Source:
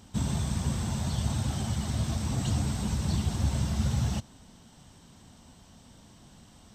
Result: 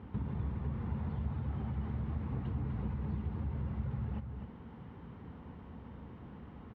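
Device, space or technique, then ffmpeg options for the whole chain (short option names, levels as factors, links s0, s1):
bass amplifier: -af "acompressor=threshold=0.00891:ratio=5,highpass=62,equalizer=f=65:t=q:w=4:g=8,equalizer=f=450:t=q:w=4:g=6,equalizer=f=650:t=q:w=4:g=-8,equalizer=f=1600:t=q:w=4:g=-4,lowpass=f=2000:w=0.5412,lowpass=f=2000:w=1.3066,aecho=1:1:252:0.447,volume=1.68"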